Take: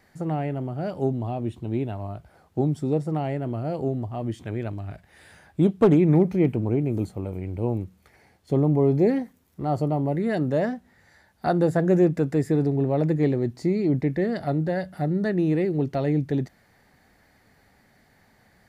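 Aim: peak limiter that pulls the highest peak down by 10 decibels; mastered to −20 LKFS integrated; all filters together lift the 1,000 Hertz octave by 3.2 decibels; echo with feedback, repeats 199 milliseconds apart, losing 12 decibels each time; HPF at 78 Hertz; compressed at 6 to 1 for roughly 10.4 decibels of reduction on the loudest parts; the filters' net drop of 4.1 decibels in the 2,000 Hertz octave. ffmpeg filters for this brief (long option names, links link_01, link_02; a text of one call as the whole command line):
ffmpeg -i in.wav -af "highpass=78,equalizer=frequency=1000:width_type=o:gain=6.5,equalizer=frequency=2000:width_type=o:gain=-7.5,acompressor=threshold=-24dB:ratio=6,alimiter=limit=-23.5dB:level=0:latency=1,aecho=1:1:199|398|597:0.251|0.0628|0.0157,volume=13dB" out.wav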